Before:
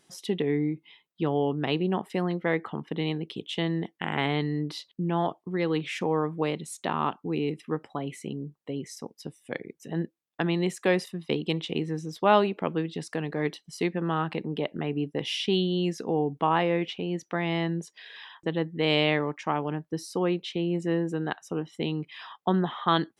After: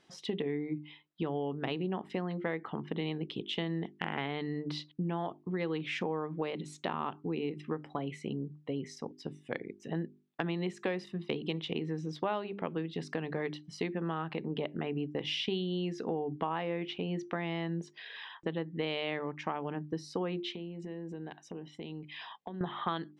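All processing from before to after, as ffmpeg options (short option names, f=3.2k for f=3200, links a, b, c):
-filter_complex "[0:a]asettb=1/sr,asplit=3[a][b][c];[a]atrim=end=20.544[d];[b]atrim=start=20.54:end=22.61,asetpts=PTS-STARTPTS,afade=t=in:d=0.004:c=qsin,afade=t=out:st=2.066:d=0.004:c=qsin,acompressor=threshold=-37dB:ratio=12:attack=3.2:release=140:knee=1:detection=peak,equalizer=f=1.3k:w=4.8:g=-14.5[e];[c]atrim=start=22.606[f];[d][e]acrossfade=d=0.004:c1=hsin:c2=qsin[g];[g][f]acrossfade=d=0.004:c1=qsin:c2=hsin,lowpass=4.3k,bandreject=f=50:t=h:w=6,bandreject=f=100:t=h:w=6,bandreject=f=150:t=h:w=6,bandreject=f=200:t=h:w=6,bandreject=f=250:t=h:w=6,bandreject=f=300:t=h:w=6,bandreject=f=350:t=h:w=6,bandreject=f=400:t=h:w=6,acompressor=threshold=-31dB:ratio=5"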